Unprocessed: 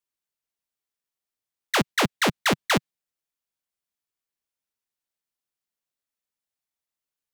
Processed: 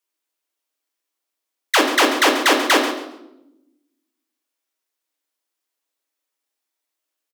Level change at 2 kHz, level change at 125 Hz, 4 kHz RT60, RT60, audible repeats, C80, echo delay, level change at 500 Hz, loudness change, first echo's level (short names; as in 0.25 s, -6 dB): +8.0 dB, under -25 dB, 0.70 s, 0.90 s, 2, 8.0 dB, 0.137 s, +9.0 dB, +7.5 dB, -11.5 dB